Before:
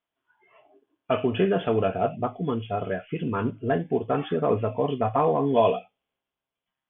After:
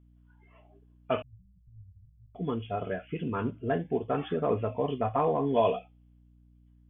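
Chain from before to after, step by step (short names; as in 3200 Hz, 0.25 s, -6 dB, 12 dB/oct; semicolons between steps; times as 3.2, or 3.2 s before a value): hum 60 Hz, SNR 28 dB; 1.22–2.35 inverse Chebyshev band-stop 390–3000 Hz, stop band 80 dB; gain -4.5 dB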